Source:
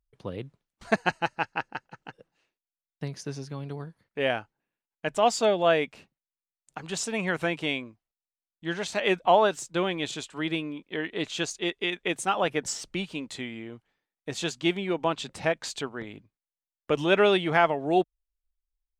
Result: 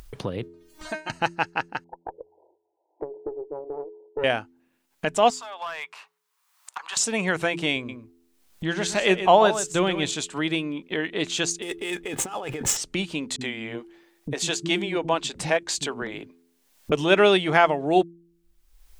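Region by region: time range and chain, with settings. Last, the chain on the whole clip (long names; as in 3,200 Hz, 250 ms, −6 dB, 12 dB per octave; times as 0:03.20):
0:00.43–0:01.10: upward compression, threshold −38 dBFS + tuned comb filter 310 Hz, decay 0.24 s, mix 100%
0:01.84–0:04.24: spectral envelope exaggerated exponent 1.5 + linear-phase brick-wall band-pass 310–1,000 Hz + tube saturation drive 28 dB, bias 0.5
0:05.30–0:06.97: four-pole ladder high-pass 910 Hz, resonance 60% + downward compressor 5 to 1, threshold −38 dBFS + hard clipping −36.5 dBFS
0:07.76–0:10.10: low-shelf EQ 120 Hz +9 dB + single-tap delay 127 ms −11 dB
0:11.62–0:12.77: running median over 9 samples + comb filter 2.4 ms, depth 38% + compressor whose output falls as the input rises −37 dBFS
0:13.36–0:16.92: parametric band 100 Hz −10 dB 0.45 octaves + notch filter 1,300 Hz, Q 19 + multiband delay without the direct sound lows, highs 50 ms, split 260 Hz
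whole clip: hum removal 85.11 Hz, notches 5; dynamic equaliser 7,800 Hz, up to +6 dB, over −48 dBFS, Q 0.86; upward compression, threshold −27 dBFS; level +3.5 dB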